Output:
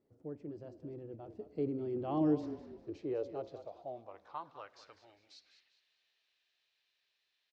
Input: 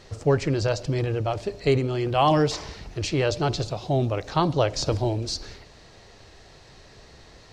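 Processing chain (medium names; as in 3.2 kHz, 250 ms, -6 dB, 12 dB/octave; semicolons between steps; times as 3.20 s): Doppler pass-by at 2.27 s, 19 m/s, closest 9.5 m; treble shelf 4.3 kHz +6.5 dB; on a send: frequency-shifting echo 201 ms, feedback 32%, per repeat -31 Hz, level -13 dB; on the sum: band-pass sweep 290 Hz -> 2.8 kHz, 2.64–5.68 s; trim -4 dB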